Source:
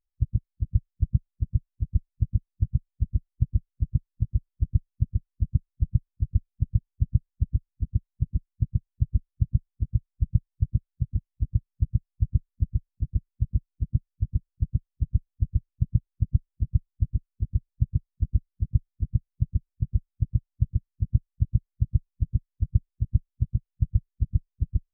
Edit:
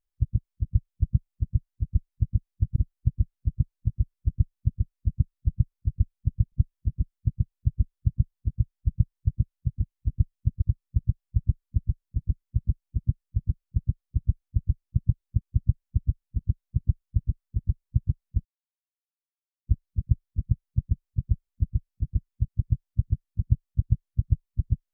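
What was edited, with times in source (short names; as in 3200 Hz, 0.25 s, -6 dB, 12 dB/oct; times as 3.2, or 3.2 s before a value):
2.76–3.11 cut
4.68–5.17 copy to 11.48
6.87–8.34 swap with 16.27–16.74
12.47–13.48 copy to 20.11
18.31 insert silence 1.22 s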